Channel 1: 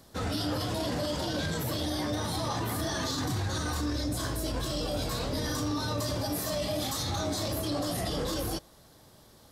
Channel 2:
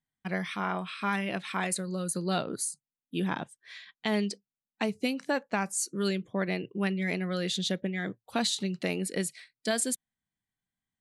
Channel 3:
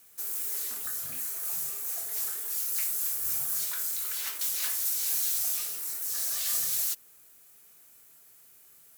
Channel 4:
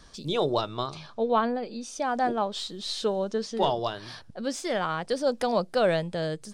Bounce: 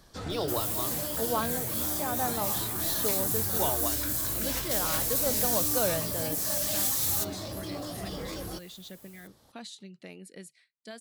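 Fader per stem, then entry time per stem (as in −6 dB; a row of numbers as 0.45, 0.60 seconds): −6.0, −15.0, +0.5, −6.5 decibels; 0.00, 1.20, 0.30, 0.00 seconds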